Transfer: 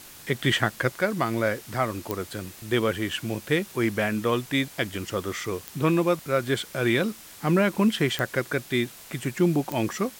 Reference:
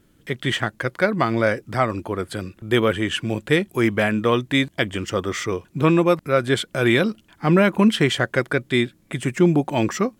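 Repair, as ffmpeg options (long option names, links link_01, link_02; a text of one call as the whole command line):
ffmpeg -i in.wav -af "adeclick=threshold=4,afwtdn=0.0056,asetnsamples=nb_out_samples=441:pad=0,asendcmd='0.92 volume volume 5.5dB',volume=0dB" out.wav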